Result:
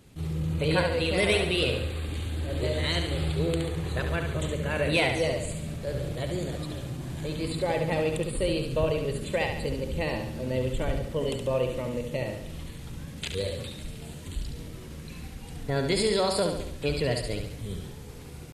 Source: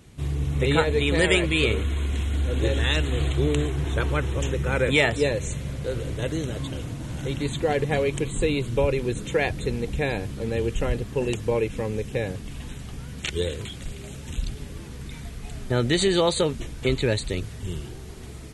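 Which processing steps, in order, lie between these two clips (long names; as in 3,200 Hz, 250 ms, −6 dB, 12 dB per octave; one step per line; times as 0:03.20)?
pitch shifter +2 semitones
in parallel at −10.5 dB: soft clipping −18 dBFS, distortion −14 dB
on the sum: flutter between parallel walls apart 12 metres, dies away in 0.71 s
level −6.5 dB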